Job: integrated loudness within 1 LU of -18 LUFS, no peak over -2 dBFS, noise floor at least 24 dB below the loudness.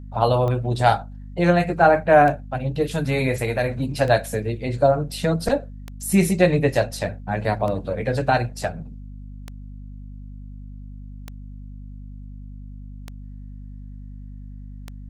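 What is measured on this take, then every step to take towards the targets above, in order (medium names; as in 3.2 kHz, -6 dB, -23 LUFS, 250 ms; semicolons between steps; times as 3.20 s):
clicks found 9; hum 50 Hz; highest harmonic 250 Hz; hum level -35 dBFS; loudness -21.0 LUFS; peak level -2.5 dBFS; loudness target -18.0 LUFS
-> de-click; hum notches 50/100/150/200/250 Hz; trim +3 dB; peak limiter -2 dBFS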